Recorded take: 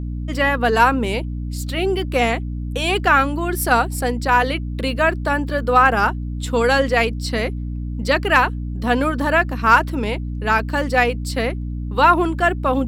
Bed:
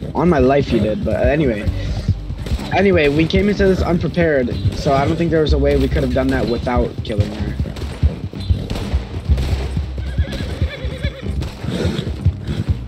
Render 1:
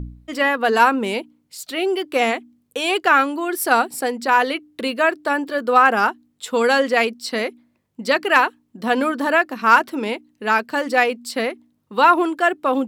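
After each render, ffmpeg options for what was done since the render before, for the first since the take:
-af "bandreject=f=60:t=h:w=4,bandreject=f=120:t=h:w=4,bandreject=f=180:t=h:w=4,bandreject=f=240:t=h:w=4,bandreject=f=300:t=h:w=4"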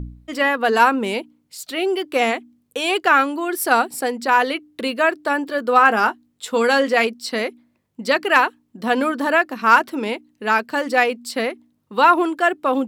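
-filter_complex "[0:a]asettb=1/sr,asplit=3[s0][s1][s2];[s0]atrim=end=5.774[s3];[s1]atrim=start=5.77:end=7.07,asetpts=PTS-STARTPTS,afade=t=in:d=0.004:c=qsin,afade=t=out:st=1.296:d=0.004:c=qsin,asplit=2[s4][s5];[s5]adelay=18,volume=0.251[s6];[s4][s6]amix=inputs=2:normalize=0,atrim=end_sample=57330[s7];[s2]atrim=start=7.066[s8];[s3][s7]acrossfade=d=0.004:c1=hsin:c2=qsin[s9];[s9][s8]acrossfade=d=0.004:c1=qsin:c2=hsin"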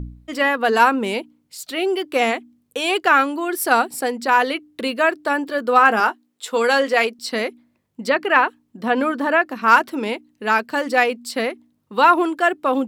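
-filter_complex "[0:a]asettb=1/sr,asplit=3[s0][s1][s2];[s0]atrim=end=6.004[s3];[s1]atrim=start=6:end=7.19,asetpts=PTS-STARTPTS,afade=t=in:d=0.004:c=qsin,afade=t=out:st=1.186:d=0.004:c=qsin,highpass=290[s4];[s2]atrim=start=7.186[s5];[s3][s4]acrossfade=d=0.004:c1=hsin:c2=qsin[s6];[s6][s5]acrossfade=d=0.004:c1=qsin:c2=hsin,asettb=1/sr,asplit=3[s7][s8][s9];[s7]atrim=end=8.094[s10];[s8]atrim=start=8.09:end=9.68,asetpts=PTS-STARTPTS,afade=t=in:d=0.004:c=qsin,afade=t=out:st=1.586:d=0.004:c=qsin,acrossover=split=3200[s11][s12];[s12]acompressor=threshold=0.00501:ratio=4:attack=1:release=60[s13];[s11][s13]amix=inputs=2:normalize=0[s14];[s9]atrim=start=9.676[s15];[s10][s14]acrossfade=d=0.004:c1=hsin:c2=qsin[s16];[s16][s15]acrossfade=d=0.004:c1=qsin:c2=hsin"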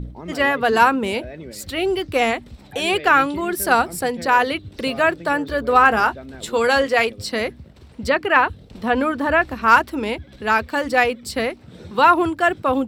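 -filter_complex "[1:a]volume=0.0944[s0];[0:a][s0]amix=inputs=2:normalize=0"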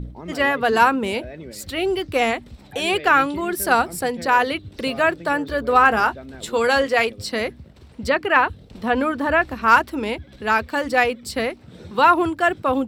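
-af "volume=0.891"

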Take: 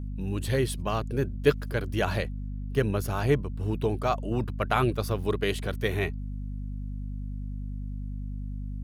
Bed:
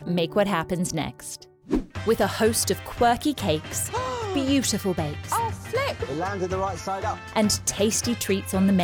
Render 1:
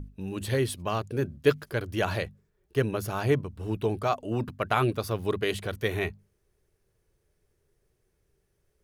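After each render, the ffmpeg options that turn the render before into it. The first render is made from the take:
-af "bandreject=f=50:t=h:w=6,bandreject=f=100:t=h:w=6,bandreject=f=150:t=h:w=6,bandreject=f=200:t=h:w=6,bandreject=f=250:t=h:w=6"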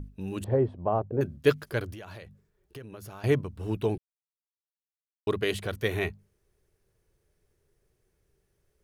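-filter_complex "[0:a]asettb=1/sr,asplit=3[s0][s1][s2];[s0]atrim=end=0.444[s3];[s1]atrim=start=0.44:end=1.21,asetpts=PTS-STARTPTS,afade=t=in:d=0.004:c=qsin,afade=t=out:st=0.766:d=0.004:c=qsin,lowpass=f=750:t=q:w=2[s4];[s2]atrim=start=1.206[s5];[s3][s4]acrossfade=d=0.004:c1=hsin:c2=qsin[s6];[s6][s5]acrossfade=d=0.004:c1=qsin:c2=hsin,asettb=1/sr,asplit=3[s7][s8][s9];[s7]atrim=end=1.934[s10];[s8]atrim=start=1.93:end=3.24,asetpts=PTS-STARTPTS,afade=t=in:d=0.004:c=qsin,afade=t=out:st=1.306:d=0.004:c=qsin,acompressor=threshold=0.01:ratio=8:attack=3.2:release=140:knee=1:detection=peak[s11];[s9]atrim=start=3.236[s12];[s10][s11]acrossfade=d=0.004:c1=hsin:c2=qsin[s13];[s13][s12]acrossfade=d=0.004:c1=qsin:c2=hsin,asplit=3[s14][s15][s16];[s14]atrim=end=3.98,asetpts=PTS-STARTPTS,afade=t=out:st=3.976:d=0.004:c=hsin[s17];[s15]atrim=start=3.98:end=5.27,asetpts=PTS-STARTPTS,volume=0[s18];[s16]atrim=start=5.27,asetpts=PTS-STARTPTS,afade=t=in:d=0.004:c=hsin[s19];[s17][s18][s19]concat=n=3:v=0:a=1"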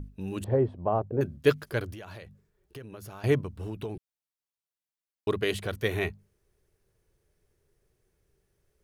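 -filter_complex "[0:a]asplit=3[s0][s1][s2];[s0]afade=t=out:st=3.49:d=0.02[s3];[s1]acompressor=threshold=0.0282:ratio=6:attack=3.2:release=140:knee=1:detection=peak,afade=t=in:st=3.49:d=0.02,afade=t=out:st=3.95:d=0.02[s4];[s2]afade=t=in:st=3.95:d=0.02[s5];[s3][s4][s5]amix=inputs=3:normalize=0"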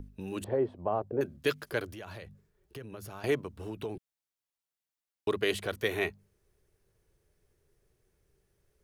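-filter_complex "[0:a]acrossover=split=240|1800[s0][s1][s2];[s0]acompressor=threshold=0.00631:ratio=6[s3];[s1]alimiter=limit=0.1:level=0:latency=1:release=88[s4];[s3][s4][s2]amix=inputs=3:normalize=0"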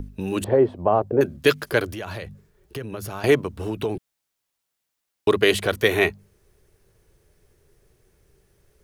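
-af "volume=3.76,alimiter=limit=0.708:level=0:latency=1"

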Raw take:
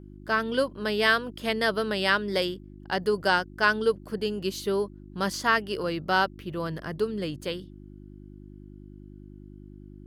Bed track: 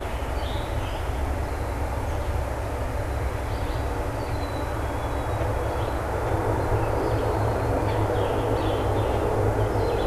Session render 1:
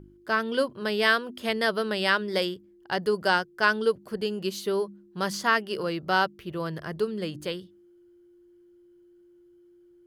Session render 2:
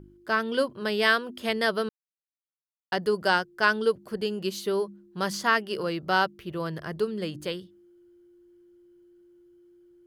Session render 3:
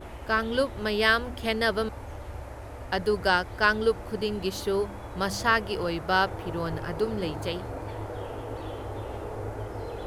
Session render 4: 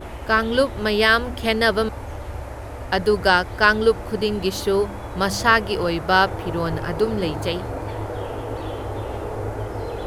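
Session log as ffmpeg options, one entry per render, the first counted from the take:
-af "bandreject=f=50:t=h:w=4,bandreject=f=100:t=h:w=4,bandreject=f=150:t=h:w=4,bandreject=f=200:t=h:w=4,bandreject=f=250:t=h:w=4,bandreject=f=300:t=h:w=4"
-filter_complex "[0:a]asplit=3[s0][s1][s2];[s0]atrim=end=1.89,asetpts=PTS-STARTPTS,afade=t=out:st=1.886:d=0.004:c=hsin[s3];[s1]atrim=start=1.89:end=2.92,asetpts=PTS-STARTPTS,volume=0[s4];[s2]atrim=start=2.92,asetpts=PTS-STARTPTS,afade=t=in:d=0.004:c=hsin[s5];[s3][s4][s5]concat=n=3:v=0:a=1"
-filter_complex "[1:a]volume=0.251[s0];[0:a][s0]amix=inputs=2:normalize=0"
-af "volume=2.24,alimiter=limit=0.708:level=0:latency=1"

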